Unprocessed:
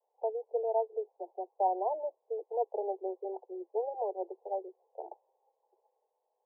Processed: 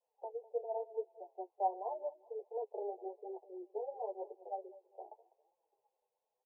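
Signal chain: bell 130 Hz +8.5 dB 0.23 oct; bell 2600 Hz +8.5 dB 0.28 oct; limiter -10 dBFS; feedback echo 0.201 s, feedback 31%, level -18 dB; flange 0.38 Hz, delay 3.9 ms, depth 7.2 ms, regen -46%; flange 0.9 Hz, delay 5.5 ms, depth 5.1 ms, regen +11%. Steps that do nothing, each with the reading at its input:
bell 130 Hz: input band starts at 320 Hz; bell 2600 Hz: input band ends at 1000 Hz; limiter -10 dBFS: input peak -18.0 dBFS

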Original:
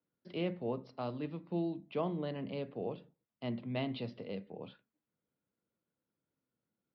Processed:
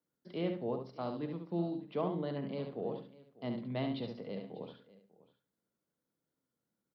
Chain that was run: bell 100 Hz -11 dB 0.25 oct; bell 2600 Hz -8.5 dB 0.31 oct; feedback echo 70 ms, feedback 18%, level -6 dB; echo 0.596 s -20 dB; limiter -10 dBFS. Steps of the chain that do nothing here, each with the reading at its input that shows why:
limiter -10 dBFS: input peak -21.5 dBFS

